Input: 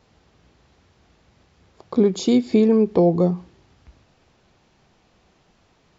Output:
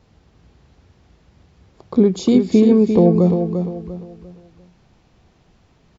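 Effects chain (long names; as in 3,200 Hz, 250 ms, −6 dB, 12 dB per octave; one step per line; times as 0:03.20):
low-shelf EQ 270 Hz +9 dB
repeating echo 347 ms, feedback 34%, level −7 dB
level −1 dB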